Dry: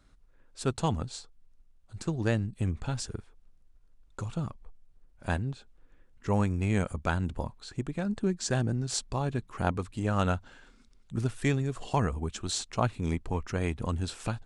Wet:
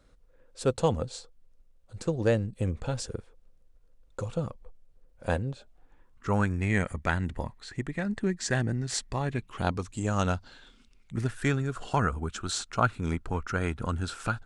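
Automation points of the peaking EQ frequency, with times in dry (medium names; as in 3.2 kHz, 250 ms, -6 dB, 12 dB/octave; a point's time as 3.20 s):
peaking EQ +14 dB 0.35 oct
5.48 s 510 Hz
6.63 s 1.9 kHz
9.31 s 1.9 kHz
9.98 s 7.8 kHz
11.48 s 1.4 kHz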